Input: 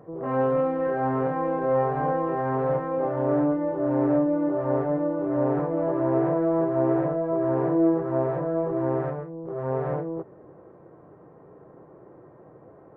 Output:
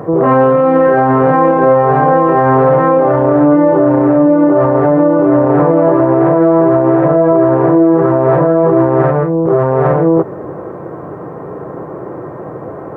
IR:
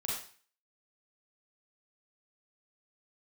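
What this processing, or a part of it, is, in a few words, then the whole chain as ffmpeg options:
mastering chain: -af "highpass=57,equalizer=f=1200:t=o:w=0.74:g=3,acompressor=threshold=0.0398:ratio=2,alimiter=level_in=16.8:limit=0.891:release=50:level=0:latency=1,volume=0.891"

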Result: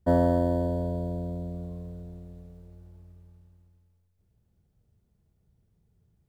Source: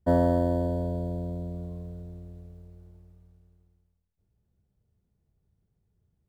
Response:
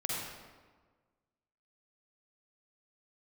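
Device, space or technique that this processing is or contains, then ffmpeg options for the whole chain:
ducked reverb: -filter_complex "[0:a]asplit=3[s0][s1][s2];[1:a]atrim=start_sample=2205[s3];[s1][s3]afir=irnorm=-1:irlink=0[s4];[s2]apad=whole_len=277234[s5];[s4][s5]sidechaincompress=threshold=0.00501:ratio=8:attack=16:release=1490,volume=0.501[s6];[s0][s6]amix=inputs=2:normalize=0"

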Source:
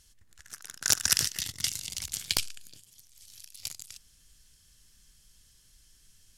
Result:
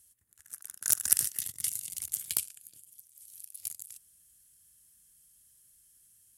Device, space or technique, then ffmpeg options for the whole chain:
budget condenser microphone: -af "highpass=73,highshelf=f=7400:t=q:w=1.5:g=13.5,volume=0.316"

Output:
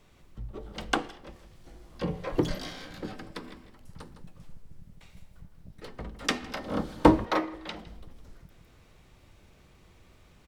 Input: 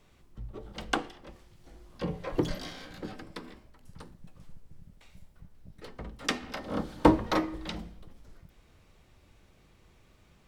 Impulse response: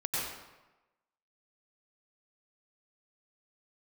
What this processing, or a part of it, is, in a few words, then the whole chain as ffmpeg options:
ducked delay: -filter_complex "[0:a]asplit=3[s0][s1][s2];[s1]adelay=159,volume=0.596[s3];[s2]apad=whole_len=468895[s4];[s3][s4]sidechaincompress=threshold=0.00282:ratio=8:attack=20:release=363[s5];[s0][s5]amix=inputs=2:normalize=0,asettb=1/sr,asplit=3[s6][s7][s8];[s6]atrim=end=7.254[s9];[s7]atrim=start=7.25:end=7.87,asetpts=PTS-STARTPTS,afade=t=in:d=0.004:c=qsin,afade=t=out:st=0.616:d=0.004:c=qsin,bass=f=250:g=-12,treble=f=4000:g=-7[s10];[s8]atrim=start=7.866[s11];[s9][s10]acrossfade=d=0.004:c1=hsin:c2=qsin[s12];[s12][s11]acrossfade=d=0.004:c1=qsin:c2=hsin,volume=1.26"

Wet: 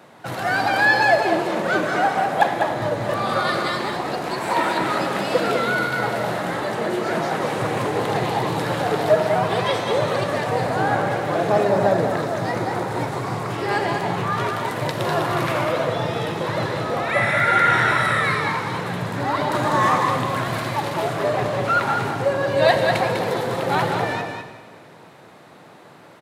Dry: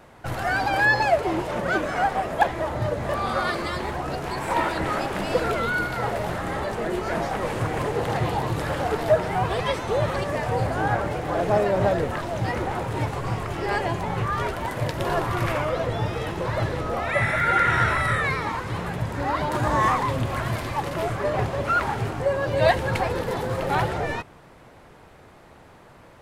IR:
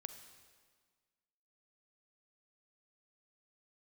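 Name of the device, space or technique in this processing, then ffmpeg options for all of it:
PA in a hall: -filter_complex "[0:a]highpass=f=130:w=0.5412,highpass=f=130:w=1.3066,equalizer=f=3900:t=o:w=0.3:g=4.5,aecho=1:1:199:0.501[s0];[1:a]atrim=start_sample=2205[s1];[s0][s1]afir=irnorm=-1:irlink=0,asettb=1/sr,asplit=3[s2][s3][s4];[s2]atrim=end=11.654[s5];[s3]atrim=start=11.65:end=13.49,asetpts=PTS-STARTPTS,afade=t=in:d=0.004:c=qsin,afade=t=out:st=1.836:d=0.004:c=qsin,equalizer=f=2900:t=o:w=0.62:g=-5.5[s6];[s4]atrim=start=13.486[s7];[s5][s6]acrossfade=d=0.004:c1=hsin:c2=qsin[s8];[s8][s7]acrossfade=d=0.004:c1=qsin:c2=hsin,volume=2.24"

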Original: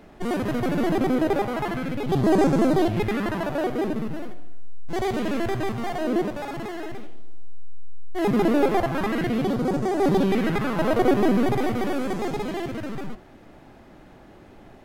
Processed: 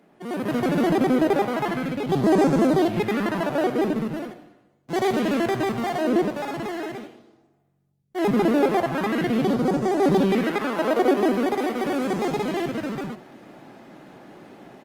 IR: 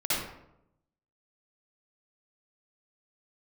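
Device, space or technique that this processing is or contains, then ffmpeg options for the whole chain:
video call: -filter_complex "[0:a]asettb=1/sr,asplit=3[s0][s1][s2];[s0]atrim=end=10.434[s3];[s1]atrim=start=10.43:end=11.86,asetpts=PTS-STARTPTS,afade=t=in:d=0.004:c=qsin,afade=t=out:st=1.426:d=0.004:c=qsin,highpass=f=240:w=0.5412,highpass=f=240:w=1.3066[s4];[s2]atrim=start=11.856[s5];[s3][s4]acrossfade=d=0.004:c1=hsin:c2=qsin[s6];[s6][s5]acrossfade=d=0.004:c1=qsin:c2=hsin,highpass=f=140:w=0.5412,highpass=f=140:w=1.3066,aecho=1:1:99:0.0708,dynaudnorm=f=280:g=3:m=3.76,volume=0.422" -ar 48000 -c:a libopus -b:a 32k

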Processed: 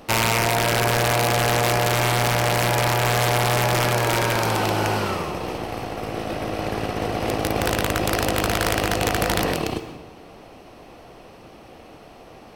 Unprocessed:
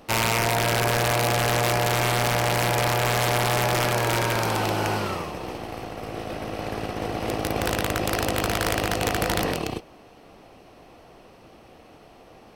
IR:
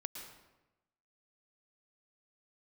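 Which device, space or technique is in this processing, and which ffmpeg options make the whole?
compressed reverb return: -filter_complex "[0:a]asplit=2[s0][s1];[1:a]atrim=start_sample=2205[s2];[s1][s2]afir=irnorm=-1:irlink=0,acompressor=threshold=0.0355:ratio=6,volume=1.06[s3];[s0][s3]amix=inputs=2:normalize=0"

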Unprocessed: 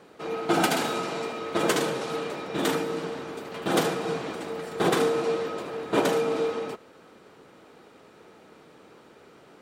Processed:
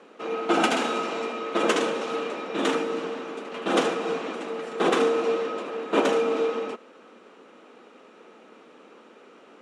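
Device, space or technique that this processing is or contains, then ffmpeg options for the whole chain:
television speaker: -af "highpass=f=220:w=0.5412,highpass=f=220:w=1.3066,equalizer=f=230:t=q:w=4:g=6,equalizer=f=510:t=q:w=4:g=3,equalizer=f=1200:t=q:w=4:g=4,equalizer=f=2700:t=q:w=4:g=5,equalizer=f=4600:t=q:w=4:g=-5,equalizer=f=8300:t=q:w=4:g=-5,lowpass=f=9000:w=0.5412,lowpass=f=9000:w=1.3066"

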